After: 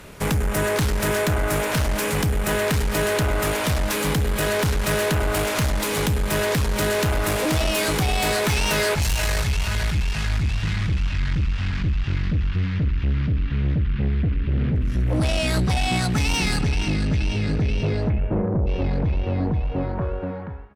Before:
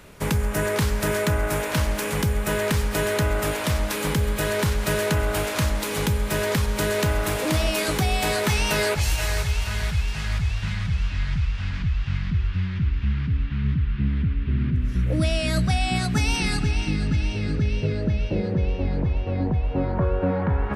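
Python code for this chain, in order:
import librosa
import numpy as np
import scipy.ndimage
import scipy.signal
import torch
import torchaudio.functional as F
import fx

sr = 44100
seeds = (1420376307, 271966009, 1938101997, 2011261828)

y = fx.fade_out_tail(x, sr, length_s=1.6)
y = fx.lowpass(y, sr, hz=fx.line((18.08, 2500.0), (18.66, 1000.0)), slope=24, at=(18.08, 18.66), fade=0.02)
y = fx.tube_stage(y, sr, drive_db=23.0, bias=0.35)
y = F.gain(torch.from_numpy(y), 6.0).numpy()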